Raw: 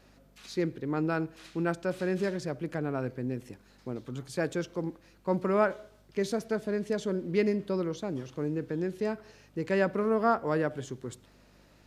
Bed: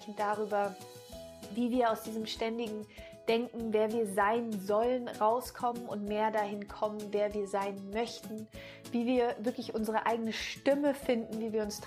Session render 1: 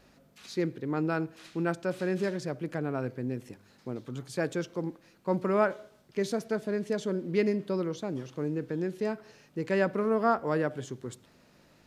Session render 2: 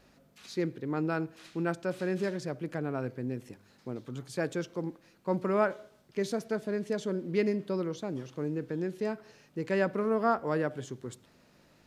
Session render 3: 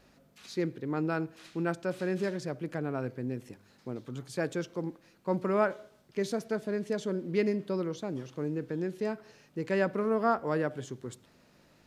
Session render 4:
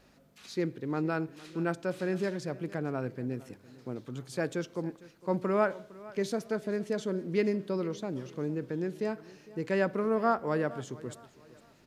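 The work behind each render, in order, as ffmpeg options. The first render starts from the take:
ffmpeg -i in.wav -af "bandreject=frequency=50:width_type=h:width=4,bandreject=frequency=100:width_type=h:width=4" out.wav
ffmpeg -i in.wav -af "volume=-1.5dB" out.wav
ffmpeg -i in.wav -af anull out.wav
ffmpeg -i in.wav -af "aecho=1:1:457|914|1371:0.1|0.035|0.0123" out.wav

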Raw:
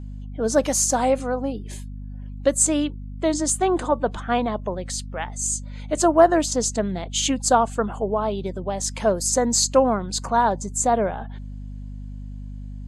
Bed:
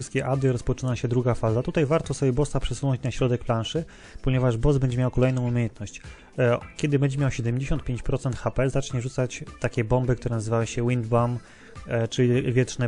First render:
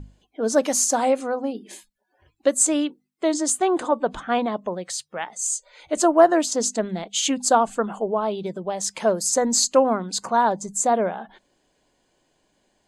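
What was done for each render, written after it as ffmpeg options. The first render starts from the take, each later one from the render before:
ffmpeg -i in.wav -af "bandreject=frequency=50:width_type=h:width=6,bandreject=frequency=100:width_type=h:width=6,bandreject=frequency=150:width_type=h:width=6,bandreject=frequency=200:width_type=h:width=6,bandreject=frequency=250:width_type=h:width=6" out.wav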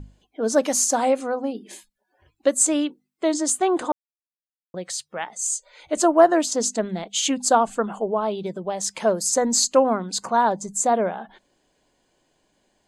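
ffmpeg -i in.wav -filter_complex "[0:a]asplit=3[link_01][link_02][link_03];[link_01]atrim=end=3.92,asetpts=PTS-STARTPTS,afade=type=out:start_time=3.916:duration=0.004:curve=hsin[link_04];[link_02]atrim=start=3.92:end=4.74,asetpts=PTS-STARTPTS,volume=0[link_05];[link_03]atrim=start=4.74,asetpts=PTS-STARTPTS,afade=type=in:duration=0.004:curve=hsin[link_06];[link_04][link_05][link_06]concat=n=3:v=0:a=1" out.wav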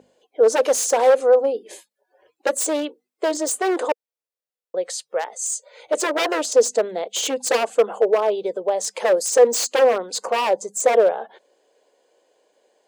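ffmpeg -i in.wav -af "aeval=exprs='0.133*(abs(mod(val(0)/0.133+3,4)-2)-1)':channel_layout=same,highpass=frequency=480:width_type=q:width=4.9" out.wav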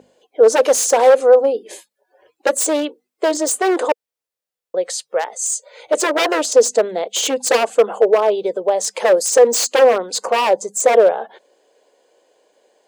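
ffmpeg -i in.wav -af "volume=4.5dB,alimiter=limit=-2dB:level=0:latency=1" out.wav

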